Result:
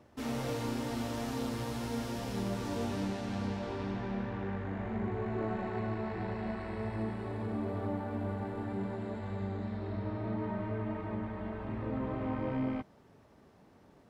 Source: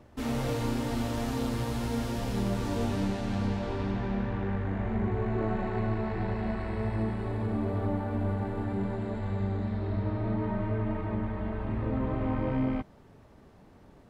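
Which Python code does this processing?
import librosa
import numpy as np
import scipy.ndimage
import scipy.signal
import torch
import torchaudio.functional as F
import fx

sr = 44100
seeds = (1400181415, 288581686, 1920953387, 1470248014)

y = fx.highpass(x, sr, hz=130.0, slope=6)
y = fx.peak_eq(y, sr, hz=5500.0, db=2.5, octaves=0.29)
y = F.gain(torch.from_numpy(y), -3.5).numpy()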